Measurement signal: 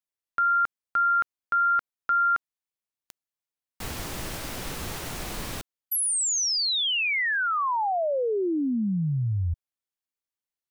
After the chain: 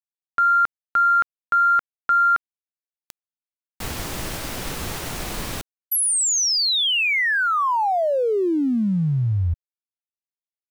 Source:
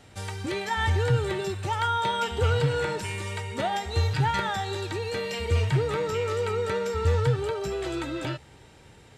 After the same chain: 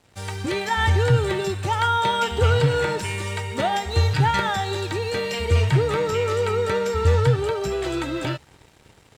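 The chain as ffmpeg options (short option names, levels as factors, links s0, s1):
-af "aeval=exprs='sgn(val(0))*max(abs(val(0))-0.00211,0)':c=same,dynaudnorm=f=150:g=3:m=1.88"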